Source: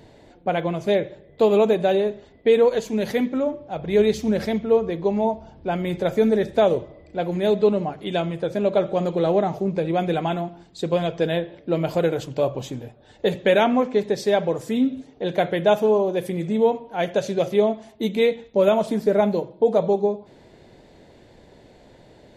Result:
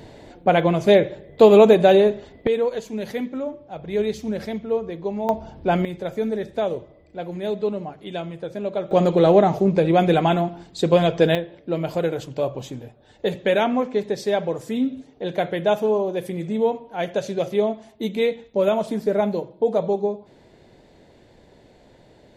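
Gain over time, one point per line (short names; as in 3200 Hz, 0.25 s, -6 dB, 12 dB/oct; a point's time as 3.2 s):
+6 dB
from 2.47 s -5 dB
from 5.29 s +5 dB
from 5.85 s -6 dB
from 8.91 s +5.5 dB
from 11.35 s -2 dB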